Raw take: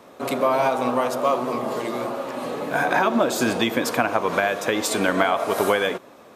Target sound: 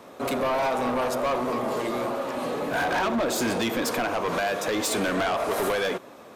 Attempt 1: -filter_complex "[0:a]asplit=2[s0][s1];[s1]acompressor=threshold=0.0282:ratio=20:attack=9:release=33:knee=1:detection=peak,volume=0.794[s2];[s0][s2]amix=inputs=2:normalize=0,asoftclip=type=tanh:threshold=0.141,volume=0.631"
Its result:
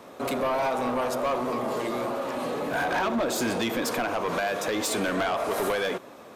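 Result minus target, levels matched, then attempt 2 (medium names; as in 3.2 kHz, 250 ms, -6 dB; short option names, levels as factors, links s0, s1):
compression: peak gain reduction +10.5 dB
-filter_complex "[0:a]asplit=2[s0][s1];[s1]acompressor=threshold=0.1:ratio=20:attack=9:release=33:knee=1:detection=peak,volume=0.794[s2];[s0][s2]amix=inputs=2:normalize=0,asoftclip=type=tanh:threshold=0.141,volume=0.631"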